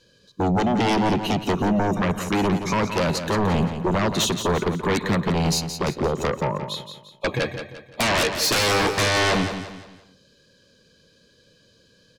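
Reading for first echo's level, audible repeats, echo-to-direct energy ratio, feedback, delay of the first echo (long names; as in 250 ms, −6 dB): −9.0 dB, 4, −8.5 dB, 39%, 173 ms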